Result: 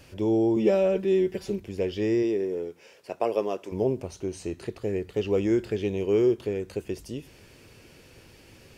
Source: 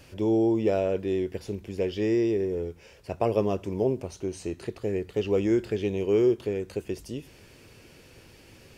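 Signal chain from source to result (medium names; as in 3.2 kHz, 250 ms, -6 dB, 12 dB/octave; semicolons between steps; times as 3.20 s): 0.56–1.60 s: comb 5.2 ms, depth 97%; 2.22–3.71 s: high-pass 180 Hz -> 410 Hz 12 dB/octave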